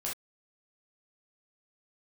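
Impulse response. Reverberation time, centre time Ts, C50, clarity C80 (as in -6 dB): no single decay rate, 31 ms, 4.5 dB, 25.0 dB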